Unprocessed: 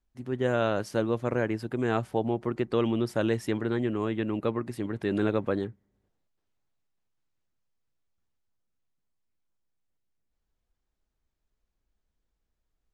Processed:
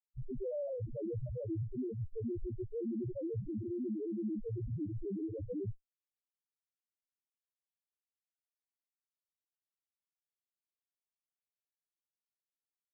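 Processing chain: Schmitt trigger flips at -40 dBFS; loudest bins only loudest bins 1; trim +3.5 dB

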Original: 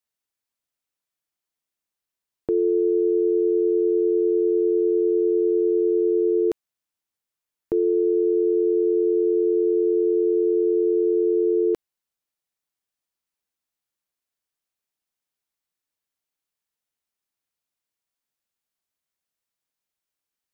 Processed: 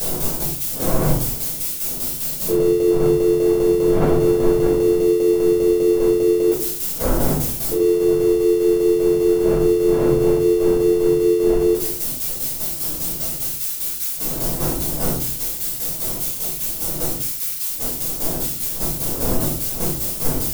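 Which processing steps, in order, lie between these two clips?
zero-crossing glitches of -23.5 dBFS; wind noise 470 Hz -33 dBFS; tremolo saw down 5 Hz, depth 75%; peak limiter -18 dBFS, peak gain reduction 9 dB; simulated room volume 370 m³, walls furnished, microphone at 5.4 m

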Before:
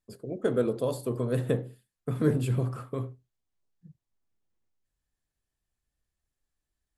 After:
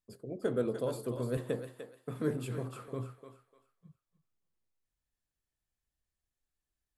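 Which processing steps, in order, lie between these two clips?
1.37–2.88 s: high-pass 230 Hz 6 dB/octave; thinning echo 298 ms, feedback 30%, high-pass 620 Hz, level -7 dB; trim -5.5 dB

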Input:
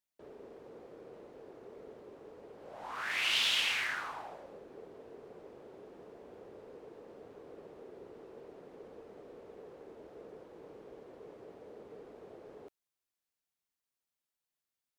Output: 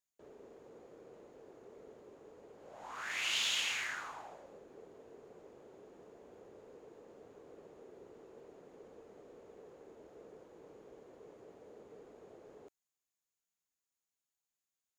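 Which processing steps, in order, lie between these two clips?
peaking EQ 6.8 kHz +12.5 dB 0.22 oct; trim -4.5 dB

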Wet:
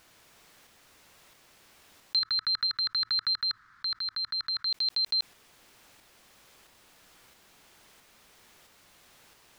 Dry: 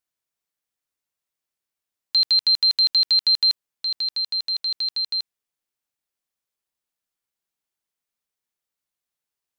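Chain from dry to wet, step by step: 2.19–4.67 s: FFT filter 110 Hz 0 dB, 350 Hz -12 dB, 630 Hz -30 dB, 1.3 kHz +12 dB, 1.8 kHz +5 dB, 2.7 kHz -16 dB, 4.1 kHz -8 dB, 9.6 kHz -22 dB; tremolo saw up 1.5 Hz, depth 45%; treble shelf 6 kHz -12 dB; level flattener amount 50%

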